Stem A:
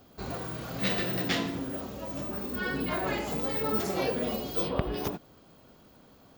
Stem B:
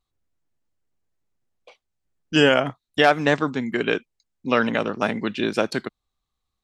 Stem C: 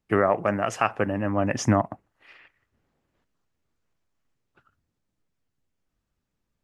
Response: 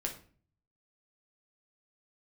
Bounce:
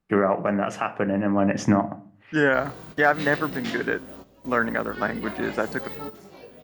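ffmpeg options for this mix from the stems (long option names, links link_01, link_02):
-filter_complex "[0:a]flanger=delay=17.5:depth=5:speed=0.45,adelay=2350,volume=-2.5dB,asplit=2[link_01][link_02];[link_02]volume=-18.5dB[link_03];[1:a]highshelf=frequency=2200:width_type=q:width=3:gain=-7,volume=-4.5dB,asplit=2[link_04][link_05];[2:a]bass=frequency=250:gain=-10,treble=frequency=4000:gain=-6,alimiter=limit=-12dB:level=0:latency=1:release=105,equalizer=frequency=180:width=1.4:gain=12,volume=-3dB,asplit=2[link_06][link_07];[link_07]volume=-4dB[link_08];[link_05]apad=whole_len=384712[link_09];[link_01][link_09]sidechaingate=range=-16dB:threshold=-59dB:ratio=16:detection=peak[link_10];[3:a]atrim=start_sample=2205[link_11];[link_03][link_08]amix=inputs=2:normalize=0[link_12];[link_12][link_11]afir=irnorm=-1:irlink=0[link_13];[link_10][link_04][link_06][link_13]amix=inputs=4:normalize=0"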